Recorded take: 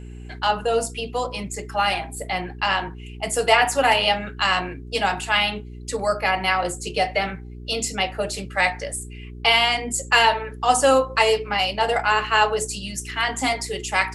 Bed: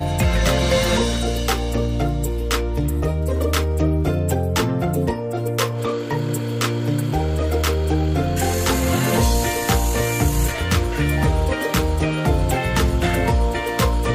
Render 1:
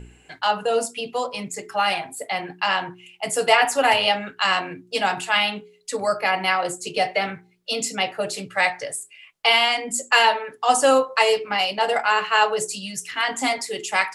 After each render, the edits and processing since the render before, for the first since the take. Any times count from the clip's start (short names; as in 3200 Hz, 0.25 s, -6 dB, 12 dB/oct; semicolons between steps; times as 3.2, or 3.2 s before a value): de-hum 60 Hz, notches 7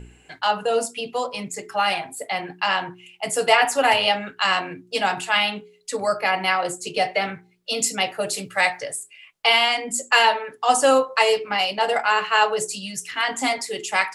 7.76–8.79 high shelf 8300 Hz +11 dB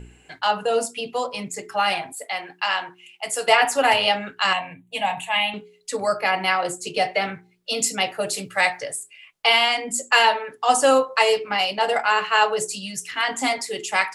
2.12–3.48 HPF 780 Hz 6 dB/oct; 4.53–5.54 fixed phaser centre 1400 Hz, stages 6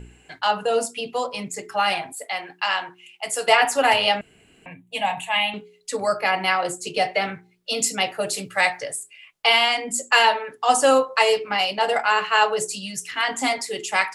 4.21–4.66 room tone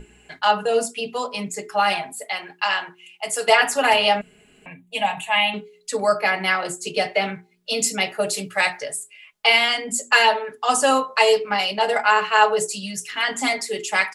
notches 60/120/180/240 Hz; comb 4.8 ms, depth 51%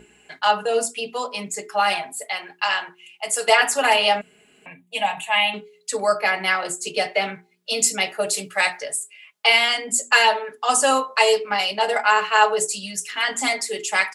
HPF 280 Hz 6 dB/oct; dynamic EQ 8200 Hz, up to +4 dB, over -38 dBFS, Q 1.3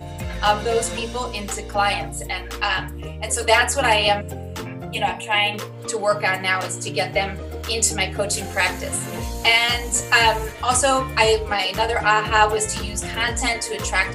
add bed -11.5 dB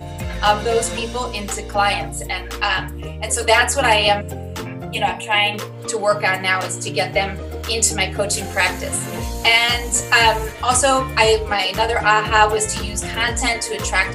gain +2.5 dB; limiter -1 dBFS, peak gain reduction 1.5 dB